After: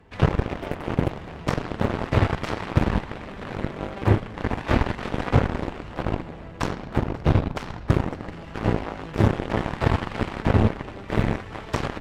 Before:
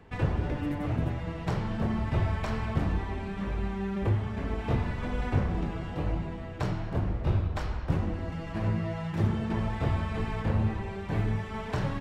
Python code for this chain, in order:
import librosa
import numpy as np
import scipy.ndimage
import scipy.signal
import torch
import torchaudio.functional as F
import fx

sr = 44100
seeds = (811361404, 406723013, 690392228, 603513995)

y = fx.comb(x, sr, ms=3.4, depth=0.6, at=(4.39, 5.1))
y = fx.echo_split(y, sr, split_hz=320.0, low_ms=336, high_ms=542, feedback_pct=52, wet_db=-15.0)
y = fx.cheby_harmonics(y, sr, harmonics=(7, 8), levels_db=(-14, -25), full_scale_db=-13.5)
y = y * 10.0 ** (8.0 / 20.0)